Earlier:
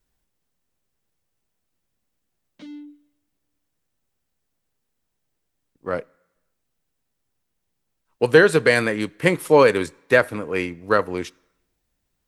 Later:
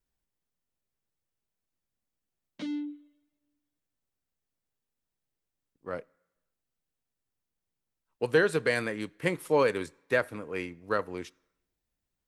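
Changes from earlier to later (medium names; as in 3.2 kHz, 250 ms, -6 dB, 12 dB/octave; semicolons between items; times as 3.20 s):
speech -10.5 dB; background +4.5 dB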